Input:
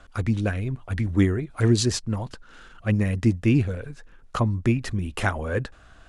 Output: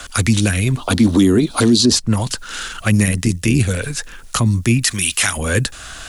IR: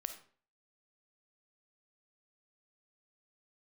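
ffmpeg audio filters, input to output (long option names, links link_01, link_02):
-filter_complex "[0:a]acrossover=split=92|300|2200|7900[link_01][link_02][link_03][link_04][link_05];[link_01]acompressor=threshold=-41dB:ratio=4[link_06];[link_02]acompressor=threshold=-21dB:ratio=4[link_07];[link_03]acompressor=threshold=-39dB:ratio=4[link_08];[link_04]acompressor=threshold=-47dB:ratio=4[link_09];[link_05]acompressor=threshold=-55dB:ratio=4[link_10];[link_06][link_07][link_08][link_09][link_10]amix=inputs=5:normalize=0,asplit=3[link_11][link_12][link_13];[link_11]afade=type=out:start_time=3.05:duration=0.02[link_14];[link_12]tremolo=f=80:d=0.667,afade=type=in:start_time=3.05:duration=0.02,afade=type=out:start_time=3.59:duration=0.02[link_15];[link_13]afade=type=in:start_time=3.59:duration=0.02[link_16];[link_14][link_15][link_16]amix=inputs=3:normalize=0,asplit=3[link_17][link_18][link_19];[link_17]afade=type=out:start_time=4.83:duration=0.02[link_20];[link_18]tiltshelf=frequency=920:gain=-10,afade=type=in:start_time=4.83:duration=0.02,afade=type=out:start_time=5.36:duration=0.02[link_21];[link_19]afade=type=in:start_time=5.36:duration=0.02[link_22];[link_20][link_21][link_22]amix=inputs=3:normalize=0,crystalizer=i=9.5:c=0,asettb=1/sr,asplit=3[link_23][link_24][link_25];[link_23]atrim=end=0.774[link_26];[link_24]atrim=start=0.77:end=1.96,asetpts=PTS-STARTPTS,afade=type=in:duration=0.004:curve=qsin,afade=type=out:start_time=1.186:duration=0.004:curve=qsin,equalizer=frequency=125:width_type=o:width=1:gain=-6,equalizer=frequency=250:width_type=o:width=1:gain=12,equalizer=frequency=500:width_type=o:width=1:gain=5,equalizer=frequency=1000:width_type=o:width=1:gain=7,equalizer=frequency=2000:width_type=o:width=1:gain=-9,equalizer=frequency=4000:width_type=o:width=1:gain=11,equalizer=frequency=8000:width_type=o:width=1:gain=-5[link_27];[link_25]atrim=start=1.956[link_28];[link_26][link_27]acrossfade=duration=0.004:curve1=hsin:curve2=qsin[link_29];[link_29][link_28]acrossfade=duration=0.004:curve1=qsin:curve2=hsin,alimiter=level_in=15.5dB:limit=-1dB:release=50:level=0:latency=1,volume=-3.5dB"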